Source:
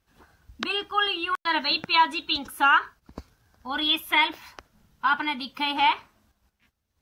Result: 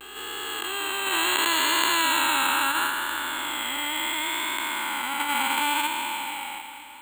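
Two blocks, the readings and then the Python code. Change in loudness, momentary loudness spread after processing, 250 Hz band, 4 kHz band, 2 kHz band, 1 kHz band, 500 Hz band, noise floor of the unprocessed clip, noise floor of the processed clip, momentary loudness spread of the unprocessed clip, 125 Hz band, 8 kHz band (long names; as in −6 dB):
−0.5 dB, 10 LU, −1.0 dB, +0.5 dB, +1.0 dB, −1.0 dB, +1.0 dB, −78 dBFS, −41 dBFS, 10 LU, can't be measured, +21.0 dB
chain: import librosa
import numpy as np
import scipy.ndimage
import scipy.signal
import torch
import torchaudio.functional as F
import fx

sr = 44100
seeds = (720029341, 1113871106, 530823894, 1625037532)

p1 = fx.spec_blur(x, sr, span_ms=1200.0)
p2 = fx.level_steps(p1, sr, step_db=12)
p3 = p1 + F.gain(torch.from_numpy(p2), 0.0).numpy()
p4 = fx.vibrato(p3, sr, rate_hz=0.72, depth_cents=57.0)
p5 = fx.graphic_eq(p4, sr, hz=(125, 500, 1000, 2000, 4000, 8000), db=(-9, 4, 3, 8, 8, -12))
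p6 = p5 + fx.echo_feedback(p5, sr, ms=481, feedback_pct=56, wet_db=-18.5, dry=0)
y = np.repeat(p6[::4], 4)[:len(p6)]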